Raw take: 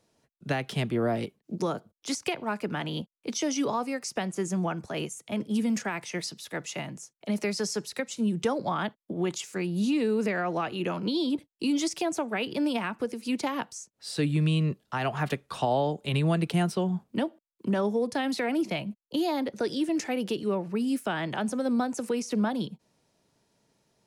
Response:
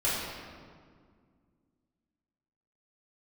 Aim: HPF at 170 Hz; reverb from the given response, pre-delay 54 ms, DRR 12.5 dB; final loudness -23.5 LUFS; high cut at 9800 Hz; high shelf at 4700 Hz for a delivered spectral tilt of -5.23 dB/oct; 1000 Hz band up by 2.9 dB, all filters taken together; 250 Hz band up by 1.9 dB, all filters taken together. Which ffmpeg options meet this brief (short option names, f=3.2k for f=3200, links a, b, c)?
-filter_complex "[0:a]highpass=170,lowpass=9.8k,equalizer=f=250:t=o:g=3.5,equalizer=f=1k:t=o:g=4,highshelf=f=4.7k:g=-5,asplit=2[a][b];[1:a]atrim=start_sample=2205,adelay=54[c];[b][c]afir=irnorm=-1:irlink=0,volume=-23dB[d];[a][d]amix=inputs=2:normalize=0,volume=4.5dB"